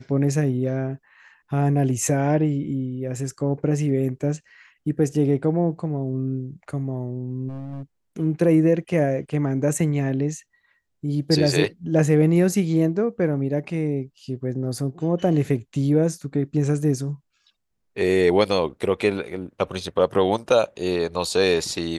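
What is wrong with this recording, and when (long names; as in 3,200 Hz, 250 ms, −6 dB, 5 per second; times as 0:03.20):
0:07.48–0:07.83: clipping −30.5 dBFS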